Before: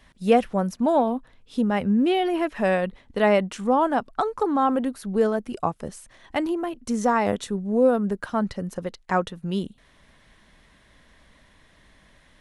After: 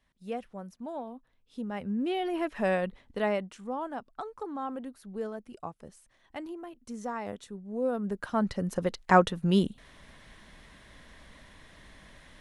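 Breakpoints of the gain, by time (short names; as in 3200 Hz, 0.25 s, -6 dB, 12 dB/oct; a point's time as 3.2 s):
1.15 s -18 dB
2.53 s -5.5 dB
3.03 s -5.5 dB
3.59 s -14.5 dB
7.66 s -14.5 dB
8.22 s -5 dB
9 s +3 dB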